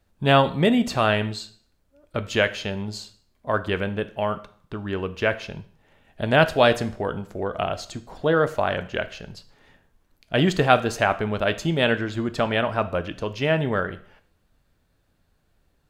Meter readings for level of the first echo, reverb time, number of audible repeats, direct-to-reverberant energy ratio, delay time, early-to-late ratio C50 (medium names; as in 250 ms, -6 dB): no echo, 0.55 s, no echo, 11.0 dB, no echo, 15.5 dB